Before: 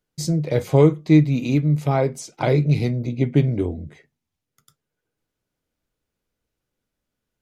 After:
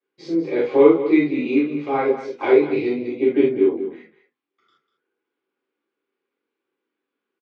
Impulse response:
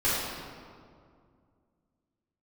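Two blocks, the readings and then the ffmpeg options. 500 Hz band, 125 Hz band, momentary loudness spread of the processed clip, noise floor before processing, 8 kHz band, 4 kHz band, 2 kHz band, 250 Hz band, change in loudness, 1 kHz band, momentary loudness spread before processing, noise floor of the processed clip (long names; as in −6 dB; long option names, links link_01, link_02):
+5.5 dB, −21.0 dB, 10 LU, −83 dBFS, below −20 dB, can't be measured, +4.0 dB, +1.0 dB, +1.0 dB, +2.5 dB, 9 LU, −83 dBFS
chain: -filter_complex "[0:a]highpass=frequency=260:width=0.5412,highpass=frequency=260:width=1.3066,equalizer=frequency=370:width_type=q:width=4:gain=8,equalizer=frequency=600:width_type=q:width=4:gain=-7,equalizer=frequency=1100:width_type=q:width=4:gain=3,equalizer=frequency=2400:width_type=q:width=4:gain=3,lowpass=frequency=3600:width=0.5412,lowpass=frequency=3600:width=1.3066,aecho=1:1:196:0.251[link_01];[1:a]atrim=start_sample=2205,atrim=end_sample=3969[link_02];[link_01][link_02]afir=irnorm=-1:irlink=0,volume=-9dB"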